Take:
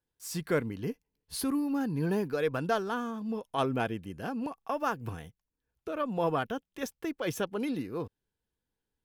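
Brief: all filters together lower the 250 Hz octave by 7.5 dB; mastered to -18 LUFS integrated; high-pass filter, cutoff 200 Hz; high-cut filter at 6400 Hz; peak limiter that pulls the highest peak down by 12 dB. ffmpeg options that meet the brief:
-af "highpass=200,lowpass=6.4k,equalizer=f=250:t=o:g=-7.5,volume=22dB,alimiter=limit=-6dB:level=0:latency=1"

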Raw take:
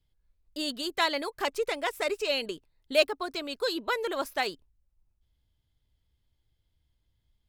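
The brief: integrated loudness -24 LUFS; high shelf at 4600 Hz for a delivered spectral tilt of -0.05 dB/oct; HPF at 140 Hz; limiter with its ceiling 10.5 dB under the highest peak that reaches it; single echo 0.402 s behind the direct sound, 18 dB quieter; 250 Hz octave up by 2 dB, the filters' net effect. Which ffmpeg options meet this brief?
-af "highpass=140,equalizer=f=250:t=o:g=3,highshelf=f=4.6k:g=-7.5,alimiter=limit=-21dB:level=0:latency=1,aecho=1:1:402:0.126,volume=9dB"

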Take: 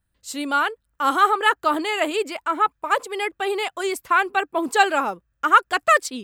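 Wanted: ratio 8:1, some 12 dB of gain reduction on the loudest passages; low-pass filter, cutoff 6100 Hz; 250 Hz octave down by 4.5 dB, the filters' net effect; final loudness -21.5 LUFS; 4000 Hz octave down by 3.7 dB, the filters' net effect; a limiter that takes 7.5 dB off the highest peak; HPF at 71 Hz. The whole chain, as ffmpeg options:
-af "highpass=71,lowpass=6.1k,equalizer=f=250:t=o:g=-6.5,equalizer=f=4k:t=o:g=-5,acompressor=threshold=-23dB:ratio=8,volume=9.5dB,alimiter=limit=-11.5dB:level=0:latency=1"

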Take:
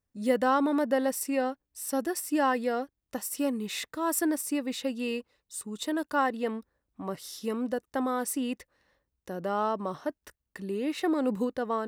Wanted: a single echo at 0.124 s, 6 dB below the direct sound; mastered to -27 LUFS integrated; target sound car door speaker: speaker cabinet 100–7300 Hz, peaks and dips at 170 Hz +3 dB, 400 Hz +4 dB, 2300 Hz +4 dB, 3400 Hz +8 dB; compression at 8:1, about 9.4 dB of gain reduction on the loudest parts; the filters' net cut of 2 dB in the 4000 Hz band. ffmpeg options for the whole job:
-af "equalizer=f=4k:t=o:g=-8.5,acompressor=threshold=-30dB:ratio=8,highpass=100,equalizer=f=170:t=q:w=4:g=3,equalizer=f=400:t=q:w=4:g=4,equalizer=f=2.3k:t=q:w=4:g=4,equalizer=f=3.4k:t=q:w=4:g=8,lowpass=f=7.3k:w=0.5412,lowpass=f=7.3k:w=1.3066,aecho=1:1:124:0.501,volume=7.5dB"

